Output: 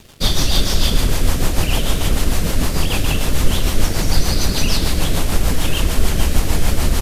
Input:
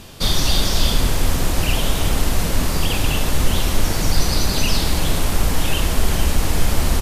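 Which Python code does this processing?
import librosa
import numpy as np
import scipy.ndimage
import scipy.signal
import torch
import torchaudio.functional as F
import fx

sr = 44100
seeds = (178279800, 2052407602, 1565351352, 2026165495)

y = np.sign(x) * np.maximum(np.abs(x) - 10.0 ** (-41.5 / 20.0), 0.0)
y = fx.rotary(y, sr, hz=6.7)
y = y * librosa.db_to_amplitude(3.5)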